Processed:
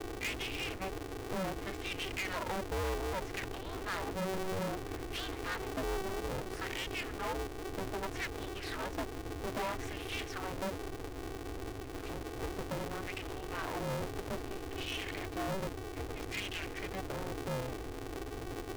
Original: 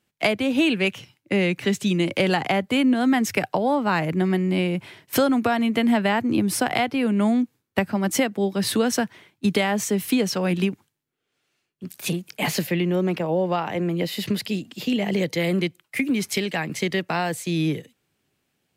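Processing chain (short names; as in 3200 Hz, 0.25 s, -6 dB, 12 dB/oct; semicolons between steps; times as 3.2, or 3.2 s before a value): wah 0.62 Hz 250–3000 Hz, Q 3.8; band noise 70–270 Hz -39 dBFS; tube stage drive 33 dB, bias 0.4; polarity switched at an audio rate 190 Hz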